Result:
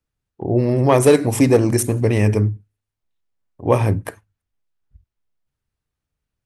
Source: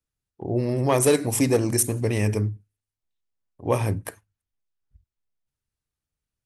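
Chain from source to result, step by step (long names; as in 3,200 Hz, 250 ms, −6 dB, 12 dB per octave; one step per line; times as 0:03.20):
high-shelf EQ 3,900 Hz −9.5 dB
level +7 dB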